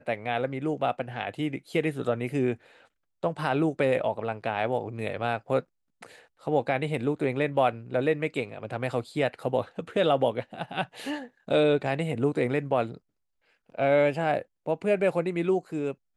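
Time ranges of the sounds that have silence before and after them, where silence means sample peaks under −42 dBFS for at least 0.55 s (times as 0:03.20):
0:03.23–0:12.97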